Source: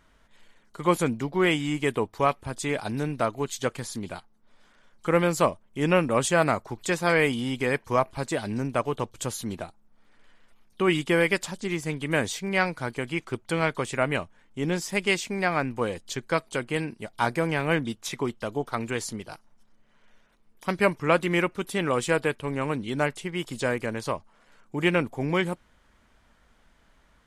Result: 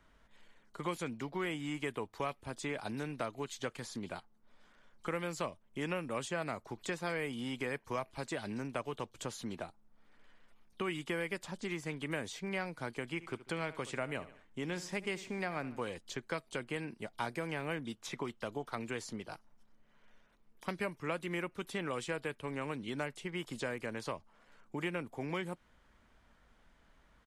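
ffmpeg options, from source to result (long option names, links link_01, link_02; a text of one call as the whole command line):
ffmpeg -i in.wav -filter_complex "[0:a]asplit=3[link_01][link_02][link_03];[link_01]afade=type=out:start_time=13.19:duration=0.02[link_04];[link_02]aecho=1:1:72|144|216:0.133|0.052|0.0203,afade=type=in:start_time=13.19:duration=0.02,afade=type=out:start_time=15.88:duration=0.02[link_05];[link_03]afade=type=in:start_time=15.88:duration=0.02[link_06];[link_04][link_05][link_06]amix=inputs=3:normalize=0,highshelf=frequency=5200:gain=-5.5,acrossover=split=150|860|1900|7900[link_07][link_08][link_09][link_10][link_11];[link_07]acompressor=threshold=-50dB:ratio=4[link_12];[link_08]acompressor=threshold=-34dB:ratio=4[link_13];[link_09]acompressor=threshold=-41dB:ratio=4[link_14];[link_10]acompressor=threshold=-40dB:ratio=4[link_15];[link_11]acompressor=threshold=-55dB:ratio=4[link_16];[link_12][link_13][link_14][link_15][link_16]amix=inputs=5:normalize=0,volume=-4.5dB" out.wav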